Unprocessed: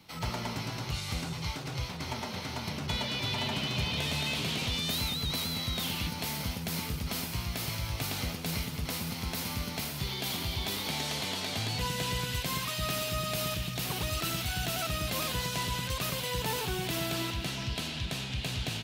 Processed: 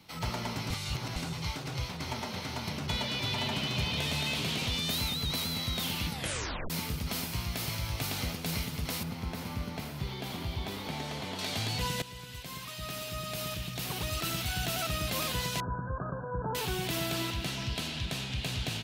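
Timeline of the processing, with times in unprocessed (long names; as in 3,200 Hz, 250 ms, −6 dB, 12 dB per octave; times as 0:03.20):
0:00.70–0:01.16: reverse
0:06.10: tape stop 0.60 s
0:09.03–0:11.39: high-shelf EQ 2,600 Hz −12 dB
0:12.02–0:14.54: fade in, from −14.5 dB
0:15.60–0:16.55: linear-phase brick-wall low-pass 1,700 Hz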